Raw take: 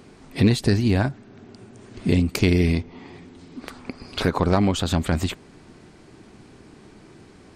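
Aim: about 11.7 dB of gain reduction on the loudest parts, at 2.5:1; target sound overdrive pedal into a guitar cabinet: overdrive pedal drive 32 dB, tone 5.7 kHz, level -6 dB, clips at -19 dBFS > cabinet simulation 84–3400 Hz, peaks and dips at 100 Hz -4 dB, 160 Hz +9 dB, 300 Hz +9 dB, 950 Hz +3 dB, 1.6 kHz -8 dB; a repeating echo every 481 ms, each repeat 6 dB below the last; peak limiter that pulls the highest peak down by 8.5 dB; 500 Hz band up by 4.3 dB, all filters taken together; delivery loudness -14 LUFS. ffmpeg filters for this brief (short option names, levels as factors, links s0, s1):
-filter_complex "[0:a]equalizer=f=500:t=o:g=3.5,acompressor=threshold=0.0282:ratio=2.5,alimiter=limit=0.0794:level=0:latency=1,aecho=1:1:481|962|1443|1924|2405|2886:0.501|0.251|0.125|0.0626|0.0313|0.0157,asplit=2[s0][s1];[s1]highpass=f=720:p=1,volume=39.8,asoftclip=type=tanh:threshold=0.112[s2];[s0][s2]amix=inputs=2:normalize=0,lowpass=f=5700:p=1,volume=0.501,highpass=84,equalizer=f=100:t=q:w=4:g=-4,equalizer=f=160:t=q:w=4:g=9,equalizer=f=300:t=q:w=4:g=9,equalizer=f=950:t=q:w=4:g=3,equalizer=f=1600:t=q:w=4:g=-8,lowpass=f=3400:w=0.5412,lowpass=f=3400:w=1.3066,volume=3.55"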